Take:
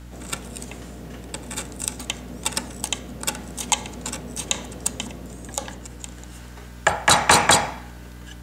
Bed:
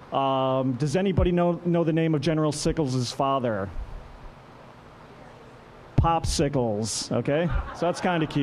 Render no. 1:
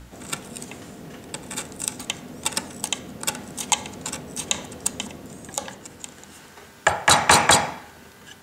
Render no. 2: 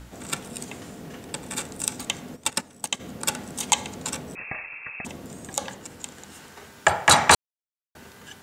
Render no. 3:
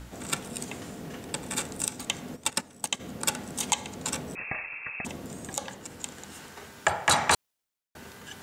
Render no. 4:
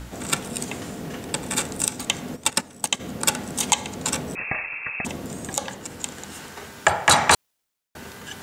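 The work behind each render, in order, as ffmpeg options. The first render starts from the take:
-af "bandreject=f=60:t=h:w=4,bandreject=f=120:t=h:w=4,bandreject=f=180:t=h:w=4,bandreject=f=240:t=h:w=4,bandreject=f=300:t=h:w=4,bandreject=f=360:t=h:w=4,bandreject=f=420:t=h:w=4,bandreject=f=480:t=h:w=4,bandreject=f=540:t=h:w=4,bandreject=f=600:t=h:w=4"
-filter_complex "[0:a]asplit=3[a][b][c];[a]afade=t=out:st=2.35:d=0.02[d];[b]agate=range=-12dB:threshold=-29dB:ratio=16:release=100:detection=peak,afade=t=in:st=2.35:d=0.02,afade=t=out:st=2.99:d=0.02[e];[c]afade=t=in:st=2.99:d=0.02[f];[d][e][f]amix=inputs=3:normalize=0,asettb=1/sr,asplit=3[g][h][i];[g]atrim=end=4.354[j];[h]atrim=start=4.35:end=5.05,asetpts=PTS-STARTPTS,afade=t=in:d=0.004:c=qsin,afade=t=out:st=0.696:d=0.004:c=qsin,lowpass=f=2.4k:t=q:w=0.5098,lowpass=f=2.4k:t=q:w=0.6013,lowpass=f=2.4k:t=q:w=0.9,lowpass=f=2.4k:t=q:w=2.563,afreqshift=-2800[k];[i]atrim=start=5.046[l];[j][k]acrossfade=d=0.004:c1=hsin:c2=qsin[m];[m][l]acrossfade=d=0.004:c1=qsin:c2=hsin,asplit=3[n][o][p];[n]atrim=end=7.35,asetpts=PTS-STARTPTS,afade=t=out:st=7.346:d=0.004:c=hsin[q];[o]atrim=start=7.35:end=7.95,asetpts=PTS-STARTPTS,volume=0[r];[p]atrim=start=7.95,asetpts=PTS-STARTPTS,afade=t=in:d=0.004:c=hsin[s];[q][r][s]concat=n=3:v=0:a=1"
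-af "alimiter=limit=-9.5dB:level=0:latency=1:release=430,areverse,acompressor=mode=upward:threshold=-42dB:ratio=2.5,areverse"
-af "volume=6.5dB"

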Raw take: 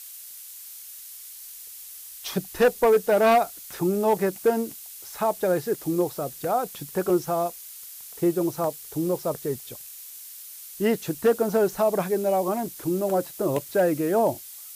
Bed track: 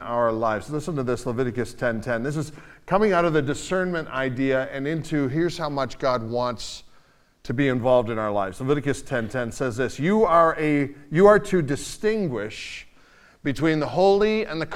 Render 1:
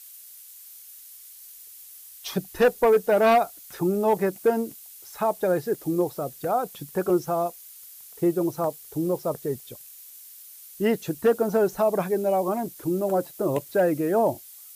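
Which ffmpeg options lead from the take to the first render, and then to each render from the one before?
-af "afftdn=nr=6:nf=-42"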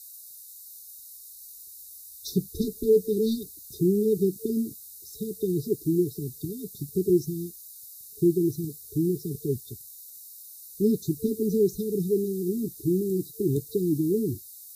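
-af "afftfilt=real='re*(1-between(b*sr/4096,450,3600))':imag='im*(1-between(b*sr/4096,450,3600))':win_size=4096:overlap=0.75,equalizer=f=87:w=0.91:g=10"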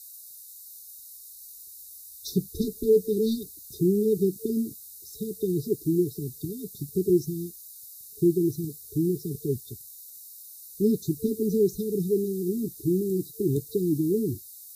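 -af anull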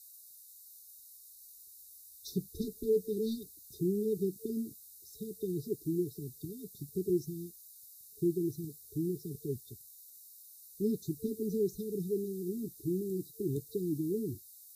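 -af "volume=-9dB"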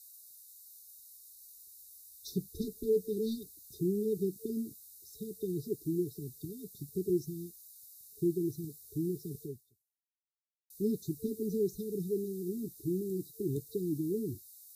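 -filter_complex "[0:a]asplit=2[a][b];[a]atrim=end=10.7,asetpts=PTS-STARTPTS,afade=t=out:st=9.42:d=1.28:c=exp[c];[b]atrim=start=10.7,asetpts=PTS-STARTPTS,afade=t=in:d=0.004:c=hsin[d];[c][d]concat=n=2:v=0:a=1"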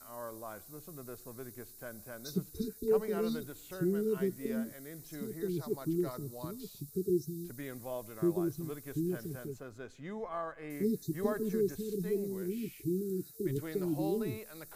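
-filter_complex "[1:a]volume=-22dB[a];[0:a][a]amix=inputs=2:normalize=0"

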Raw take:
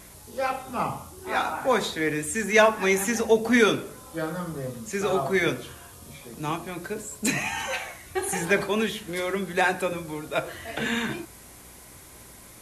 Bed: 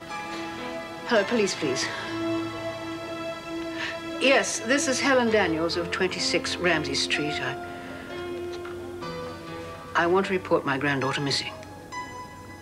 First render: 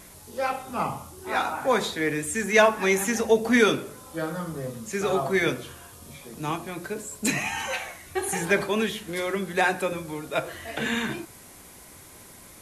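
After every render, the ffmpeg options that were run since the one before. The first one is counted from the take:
-af "bandreject=f=60:t=h:w=4,bandreject=f=120:t=h:w=4"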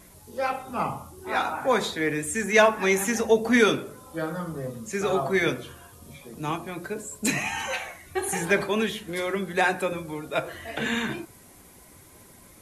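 -af "afftdn=nr=6:nf=-48"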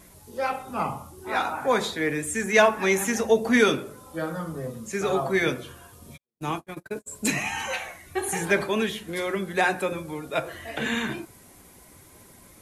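-filter_complex "[0:a]asplit=3[a][b][c];[a]afade=t=out:st=6.16:d=0.02[d];[b]agate=range=-51dB:threshold=-35dB:ratio=16:release=100:detection=peak,afade=t=in:st=6.16:d=0.02,afade=t=out:st=7.06:d=0.02[e];[c]afade=t=in:st=7.06:d=0.02[f];[d][e][f]amix=inputs=3:normalize=0"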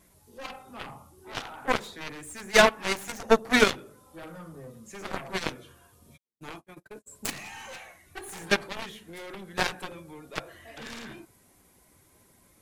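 -af "aeval=exprs='0.562*(cos(1*acos(clip(val(0)/0.562,-1,1)))-cos(1*PI/2))+0.0447*(cos(4*acos(clip(val(0)/0.562,-1,1)))-cos(4*PI/2))+0.00794*(cos(5*acos(clip(val(0)/0.562,-1,1)))-cos(5*PI/2))+0.00447*(cos(6*acos(clip(val(0)/0.562,-1,1)))-cos(6*PI/2))+0.112*(cos(7*acos(clip(val(0)/0.562,-1,1)))-cos(7*PI/2))':c=same"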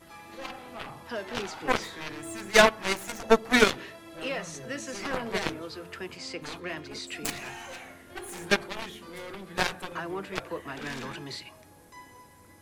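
-filter_complex "[1:a]volume=-13.5dB[a];[0:a][a]amix=inputs=2:normalize=0"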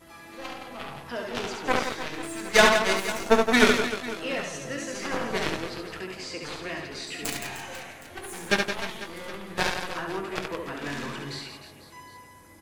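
-filter_complex "[0:a]asplit=2[a][b];[b]adelay=21,volume=-11dB[c];[a][c]amix=inputs=2:normalize=0,aecho=1:1:70|168|305.2|497.3|766.2:0.631|0.398|0.251|0.158|0.1"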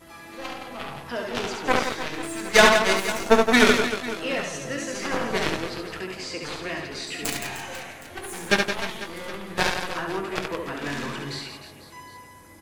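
-af "volume=3dB,alimiter=limit=-2dB:level=0:latency=1"

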